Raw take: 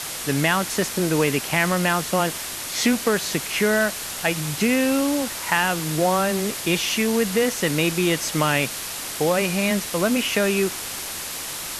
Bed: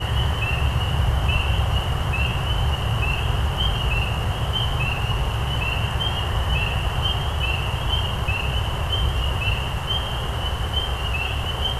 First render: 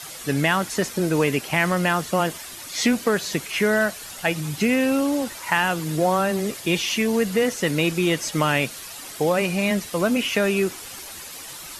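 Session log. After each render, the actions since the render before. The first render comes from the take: denoiser 10 dB, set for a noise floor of -32 dBFS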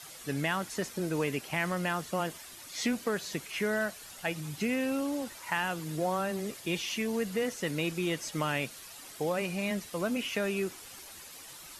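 gain -10.5 dB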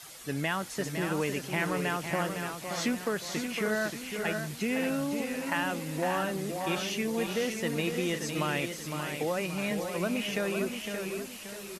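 echo 0.508 s -7.5 dB; warbling echo 0.579 s, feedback 36%, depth 88 cents, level -7.5 dB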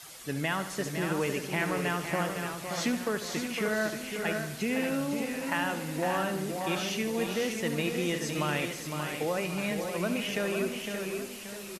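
feedback echo 74 ms, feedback 59%, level -12 dB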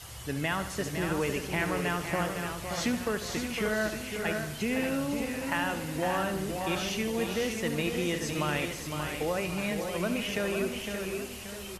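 add bed -25 dB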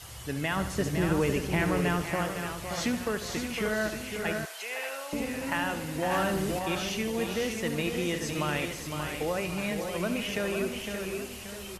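0.56–2.04 low shelf 430 Hz +6.5 dB; 4.45–5.13 HPF 590 Hz 24 dB/oct; 6.11–6.59 sample leveller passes 1

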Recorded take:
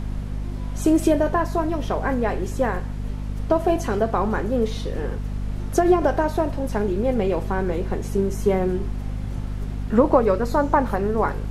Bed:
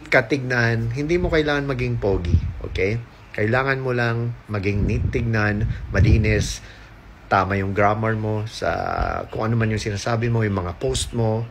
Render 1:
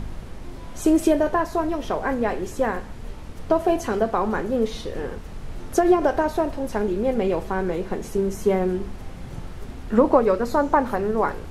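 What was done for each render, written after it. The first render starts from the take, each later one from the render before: de-hum 50 Hz, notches 5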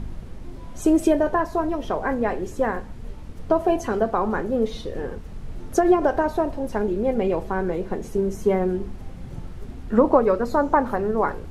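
denoiser 6 dB, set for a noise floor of -37 dBFS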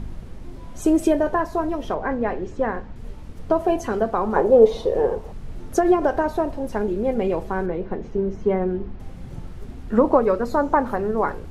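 1.94–2.96 air absorption 130 m; 4.36–5.32 band shelf 630 Hz +12 dB; 7.66–9 air absorption 220 m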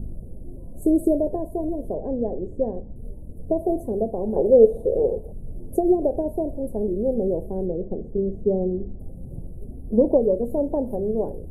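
elliptic band-stop 590–9900 Hz, stop band 40 dB; 9.73–10.35 spectral delete 1200–8400 Hz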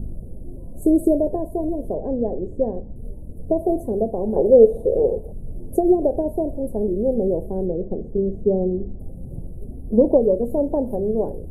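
gain +2.5 dB; limiter -2 dBFS, peak gain reduction 1.5 dB

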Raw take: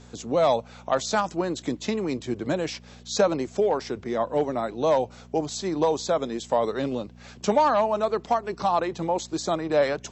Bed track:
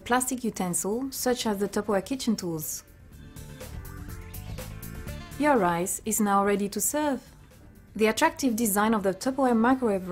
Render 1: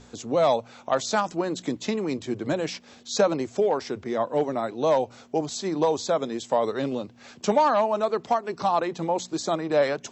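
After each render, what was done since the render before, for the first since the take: de-hum 60 Hz, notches 3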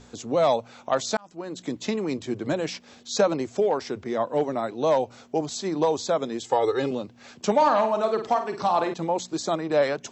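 1.17–1.85 fade in; 6.44–6.91 comb 2.4 ms, depth 95%; 7.55–8.94 flutter echo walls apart 8.5 m, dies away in 0.38 s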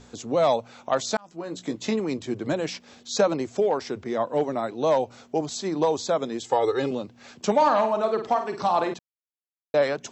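1.26–2 doubler 18 ms -7.5 dB; 7.93–8.39 high shelf 5600 Hz -6.5 dB; 8.99–9.74 mute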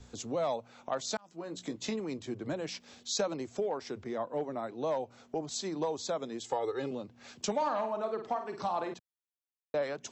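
compressor 2:1, threshold -39 dBFS, peak gain reduction 13 dB; three-band expander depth 40%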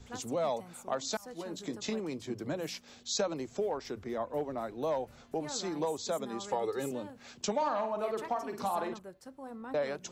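add bed track -22 dB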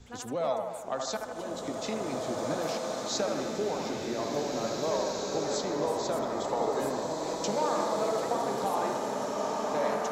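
on a send: band-limited delay 77 ms, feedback 66%, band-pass 990 Hz, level -3 dB; on the sum: bloom reverb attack 2.18 s, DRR -1 dB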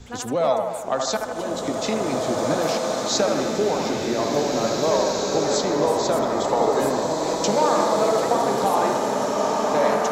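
gain +9.5 dB

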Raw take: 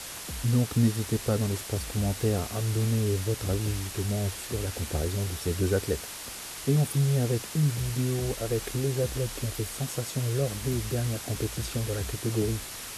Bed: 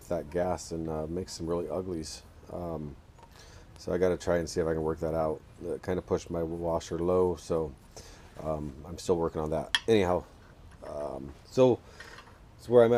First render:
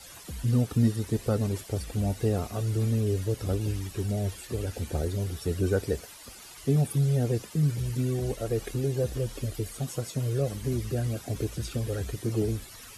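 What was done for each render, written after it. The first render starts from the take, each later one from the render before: denoiser 13 dB, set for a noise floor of -40 dBFS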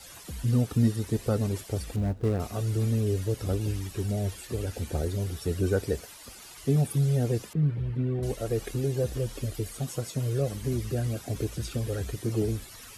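1.96–2.4 median filter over 41 samples; 7.53–8.23 air absorption 490 m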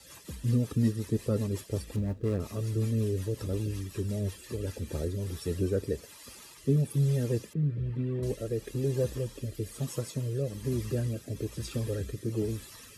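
notch comb 730 Hz; rotary speaker horn 5.5 Hz, later 1.1 Hz, at 4.46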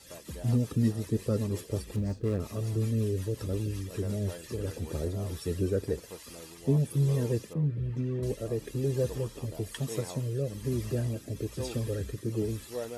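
add bed -16.5 dB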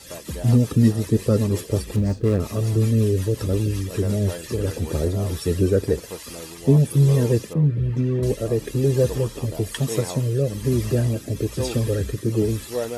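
gain +10 dB

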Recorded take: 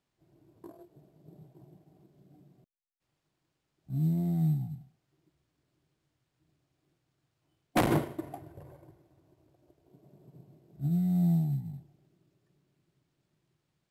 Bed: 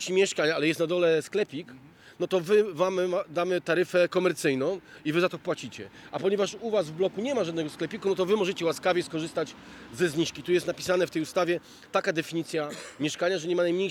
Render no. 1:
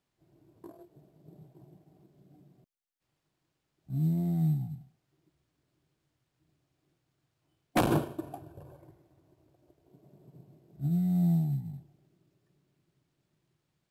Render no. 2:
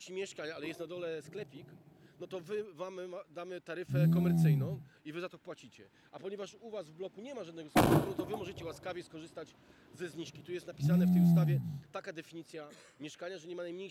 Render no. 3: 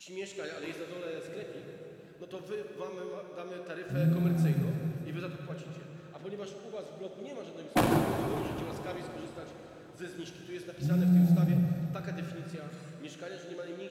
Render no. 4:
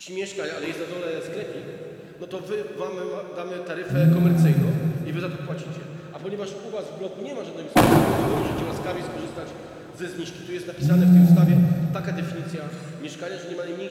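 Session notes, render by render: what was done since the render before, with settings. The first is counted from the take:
7.79–8.8 Butterworth band-stop 2000 Hz, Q 4
add bed -17 dB
echo 0.596 s -21.5 dB; plate-style reverb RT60 3.9 s, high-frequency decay 0.7×, DRR 2 dB
gain +10 dB

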